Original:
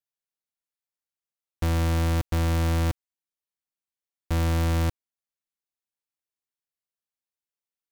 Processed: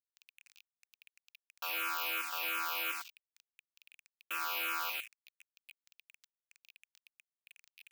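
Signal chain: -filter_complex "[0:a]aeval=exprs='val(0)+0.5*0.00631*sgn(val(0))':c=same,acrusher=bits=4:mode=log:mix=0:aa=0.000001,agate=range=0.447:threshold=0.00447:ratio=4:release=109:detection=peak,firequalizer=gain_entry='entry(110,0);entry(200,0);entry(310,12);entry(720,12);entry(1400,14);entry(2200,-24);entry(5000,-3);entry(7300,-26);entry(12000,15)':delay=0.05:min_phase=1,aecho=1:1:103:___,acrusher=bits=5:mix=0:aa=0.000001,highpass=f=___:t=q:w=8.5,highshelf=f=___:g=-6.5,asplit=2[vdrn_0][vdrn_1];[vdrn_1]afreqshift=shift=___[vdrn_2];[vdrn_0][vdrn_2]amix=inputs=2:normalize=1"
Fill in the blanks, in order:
0.562, 2.5k, 5.6k, -2.8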